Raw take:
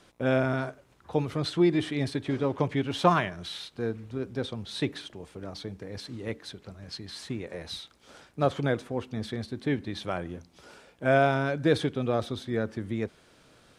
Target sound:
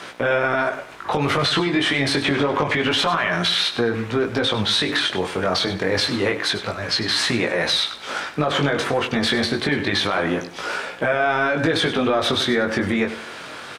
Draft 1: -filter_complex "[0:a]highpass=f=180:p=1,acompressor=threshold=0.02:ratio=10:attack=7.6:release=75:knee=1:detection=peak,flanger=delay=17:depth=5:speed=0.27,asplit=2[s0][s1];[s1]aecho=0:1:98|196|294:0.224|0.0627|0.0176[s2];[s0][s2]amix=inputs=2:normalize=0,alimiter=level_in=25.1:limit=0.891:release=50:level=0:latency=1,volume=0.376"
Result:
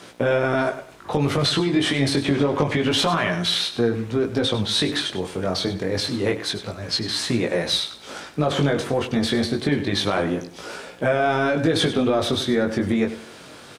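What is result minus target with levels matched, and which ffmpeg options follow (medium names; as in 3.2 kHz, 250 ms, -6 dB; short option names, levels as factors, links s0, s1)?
2 kHz band -4.5 dB
-filter_complex "[0:a]highpass=f=180:p=1,equalizer=f=1600:w=0.41:g=11,acompressor=threshold=0.02:ratio=10:attack=7.6:release=75:knee=1:detection=peak,flanger=delay=17:depth=5:speed=0.27,asplit=2[s0][s1];[s1]aecho=0:1:98|196|294:0.224|0.0627|0.0176[s2];[s0][s2]amix=inputs=2:normalize=0,alimiter=level_in=25.1:limit=0.891:release=50:level=0:latency=1,volume=0.376"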